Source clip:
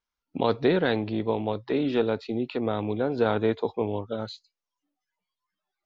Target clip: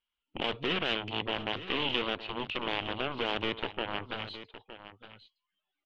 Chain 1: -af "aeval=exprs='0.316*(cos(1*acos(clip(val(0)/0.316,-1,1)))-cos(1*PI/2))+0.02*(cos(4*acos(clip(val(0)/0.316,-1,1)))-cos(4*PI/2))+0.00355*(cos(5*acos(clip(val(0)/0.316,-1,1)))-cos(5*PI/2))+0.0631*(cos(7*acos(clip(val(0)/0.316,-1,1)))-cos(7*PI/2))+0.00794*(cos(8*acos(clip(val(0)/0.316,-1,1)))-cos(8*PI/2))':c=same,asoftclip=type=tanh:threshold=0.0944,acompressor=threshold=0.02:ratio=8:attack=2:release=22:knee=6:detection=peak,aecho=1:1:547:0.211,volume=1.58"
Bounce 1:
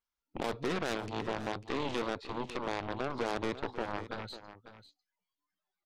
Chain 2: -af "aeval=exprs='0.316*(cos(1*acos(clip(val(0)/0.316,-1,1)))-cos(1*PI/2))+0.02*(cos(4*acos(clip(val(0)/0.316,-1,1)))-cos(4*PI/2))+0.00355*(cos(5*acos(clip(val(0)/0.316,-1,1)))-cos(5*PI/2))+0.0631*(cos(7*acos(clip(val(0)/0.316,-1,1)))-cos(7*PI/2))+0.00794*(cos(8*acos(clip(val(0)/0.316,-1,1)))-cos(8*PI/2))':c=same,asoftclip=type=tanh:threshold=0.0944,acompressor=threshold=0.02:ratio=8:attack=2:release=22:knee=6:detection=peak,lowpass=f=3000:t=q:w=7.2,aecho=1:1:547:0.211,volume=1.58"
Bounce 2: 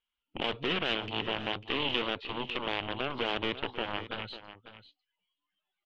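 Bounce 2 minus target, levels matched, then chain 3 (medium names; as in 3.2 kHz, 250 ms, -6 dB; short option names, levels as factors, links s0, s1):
echo 367 ms early
-af "aeval=exprs='0.316*(cos(1*acos(clip(val(0)/0.316,-1,1)))-cos(1*PI/2))+0.02*(cos(4*acos(clip(val(0)/0.316,-1,1)))-cos(4*PI/2))+0.00355*(cos(5*acos(clip(val(0)/0.316,-1,1)))-cos(5*PI/2))+0.0631*(cos(7*acos(clip(val(0)/0.316,-1,1)))-cos(7*PI/2))+0.00794*(cos(8*acos(clip(val(0)/0.316,-1,1)))-cos(8*PI/2))':c=same,asoftclip=type=tanh:threshold=0.0944,acompressor=threshold=0.02:ratio=8:attack=2:release=22:knee=6:detection=peak,lowpass=f=3000:t=q:w=7.2,aecho=1:1:914:0.211,volume=1.58"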